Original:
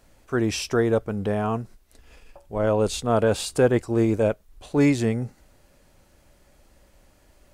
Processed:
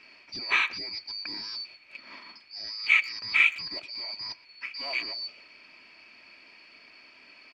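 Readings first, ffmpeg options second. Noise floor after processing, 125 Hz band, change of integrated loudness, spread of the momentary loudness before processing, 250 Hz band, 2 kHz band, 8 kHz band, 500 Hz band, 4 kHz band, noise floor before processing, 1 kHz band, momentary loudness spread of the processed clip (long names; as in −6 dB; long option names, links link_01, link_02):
−56 dBFS, below −30 dB, −4.0 dB, 10 LU, −29.5 dB, +8.5 dB, below −15 dB, −28.5 dB, +5.0 dB, −59 dBFS, −9.5 dB, 20 LU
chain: -filter_complex "[0:a]afftfilt=real='real(if(lt(b,272),68*(eq(floor(b/68),0)*1+eq(floor(b/68),1)*2+eq(floor(b/68),2)*3+eq(floor(b/68),3)*0)+mod(b,68),b),0)':imag='imag(if(lt(b,272),68*(eq(floor(b/68),0)*1+eq(floor(b/68),1)*2+eq(floor(b/68),2)*3+eq(floor(b/68),3)*0)+mod(b,68),b),0)':win_size=2048:overlap=0.75,highpass=160,aecho=1:1:3.1:0.41,areverse,acompressor=threshold=-27dB:ratio=10,areverse,acrusher=bits=10:mix=0:aa=0.000001,asoftclip=type=tanh:threshold=-27.5dB,lowpass=frequency=2400:width_type=q:width=13,asplit=2[link_01][link_02];[link_02]adelay=120,highpass=300,lowpass=3400,asoftclip=type=hard:threshold=-21dB,volume=-19dB[link_03];[link_01][link_03]amix=inputs=2:normalize=0,volume=5.5dB"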